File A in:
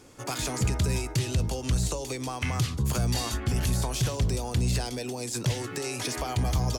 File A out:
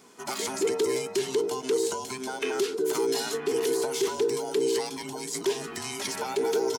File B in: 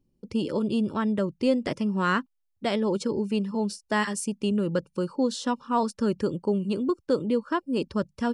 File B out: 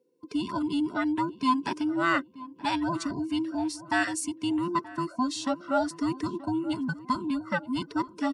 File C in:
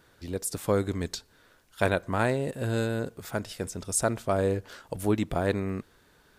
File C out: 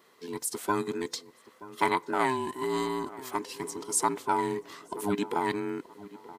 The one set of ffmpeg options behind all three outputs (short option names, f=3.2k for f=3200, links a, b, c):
-filter_complex "[0:a]afftfilt=real='real(if(between(b,1,1008),(2*floor((b-1)/24)+1)*24-b,b),0)':imag='imag(if(between(b,1,1008),(2*floor((b-1)/24)+1)*24-b,b),0)*if(between(b,1,1008),-1,1)':win_size=2048:overlap=0.75,highpass=250,asplit=2[a][b];[b]adelay=928,lowpass=f=1.5k:p=1,volume=-17dB,asplit=2[c][d];[d]adelay=928,lowpass=f=1.5k:p=1,volume=0.4,asplit=2[e][f];[f]adelay=928,lowpass=f=1.5k:p=1,volume=0.4[g];[c][e][g]amix=inputs=3:normalize=0[h];[a][h]amix=inputs=2:normalize=0"